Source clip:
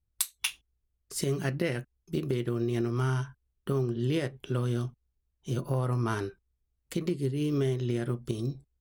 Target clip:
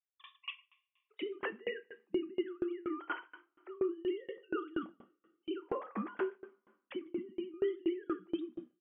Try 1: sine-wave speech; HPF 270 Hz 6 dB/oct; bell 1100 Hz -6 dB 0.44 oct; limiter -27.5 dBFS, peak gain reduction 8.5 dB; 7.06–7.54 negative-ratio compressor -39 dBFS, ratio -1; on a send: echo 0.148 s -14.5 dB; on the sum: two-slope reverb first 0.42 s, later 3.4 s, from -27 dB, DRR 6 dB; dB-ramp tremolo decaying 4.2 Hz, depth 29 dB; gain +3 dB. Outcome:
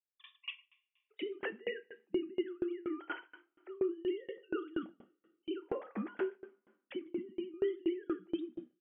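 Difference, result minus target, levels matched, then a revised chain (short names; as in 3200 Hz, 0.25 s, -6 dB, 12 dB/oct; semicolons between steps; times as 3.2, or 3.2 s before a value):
1000 Hz band -4.5 dB
sine-wave speech; HPF 270 Hz 6 dB/oct; bell 1100 Hz +3.5 dB 0.44 oct; limiter -27.5 dBFS, peak gain reduction 8.5 dB; 7.06–7.54 negative-ratio compressor -39 dBFS, ratio -1; on a send: echo 0.148 s -14.5 dB; on the sum: two-slope reverb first 0.42 s, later 3.4 s, from -27 dB, DRR 6 dB; dB-ramp tremolo decaying 4.2 Hz, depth 29 dB; gain +3 dB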